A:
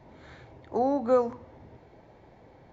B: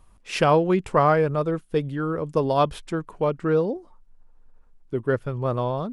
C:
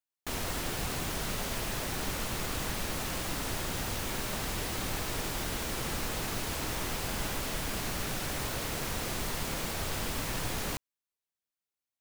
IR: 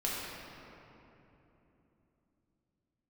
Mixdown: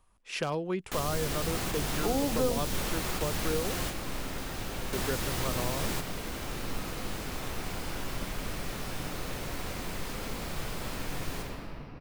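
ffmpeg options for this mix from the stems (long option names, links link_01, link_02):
-filter_complex "[0:a]adelay=1300,volume=-0.5dB[link_01];[1:a]lowshelf=frequency=390:gain=-7,aeval=exprs='0.299*(abs(mod(val(0)/0.299+3,4)-2)-1)':channel_layout=same,volume=-6.5dB,asplit=2[link_02][link_03];[2:a]adelay=650,volume=-2.5dB,asplit=2[link_04][link_05];[link_05]volume=-6.5dB[link_06];[link_03]apad=whole_len=558156[link_07];[link_04][link_07]sidechaingate=range=-33dB:threshold=-53dB:ratio=16:detection=peak[link_08];[3:a]atrim=start_sample=2205[link_09];[link_06][link_09]afir=irnorm=-1:irlink=0[link_10];[link_01][link_02][link_08][link_10]amix=inputs=4:normalize=0,acrossover=split=370|3000[link_11][link_12][link_13];[link_12]acompressor=threshold=-32dB:ratio=6[link_14];[link_11][link_14][link_13]amix=inputs=3:normalize=0"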